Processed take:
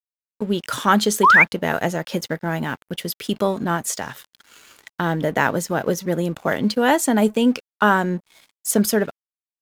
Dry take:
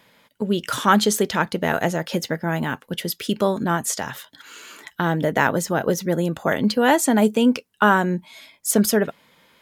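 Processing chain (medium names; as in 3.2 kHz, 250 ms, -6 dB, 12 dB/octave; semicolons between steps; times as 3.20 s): painted sound rise, 1.23–1.44 s, 920–2500 Hz -11 dBFS; crossover distortion -43 dBFS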